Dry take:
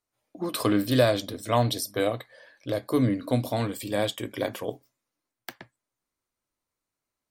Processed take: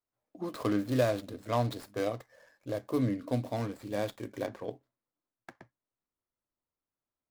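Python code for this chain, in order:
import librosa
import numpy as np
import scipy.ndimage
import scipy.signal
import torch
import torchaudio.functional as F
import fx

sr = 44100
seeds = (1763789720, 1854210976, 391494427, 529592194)

y = scipy.signal.medfilt(x, 15)
y = fx.high_shelf(y, sr, hz=6300.0, db=fx.steps((0.0, 5.0), (4.45, -6.5), (5.51, -12.0)))
y = F.gain(torch.from_numpy(y), -6.0).numpy()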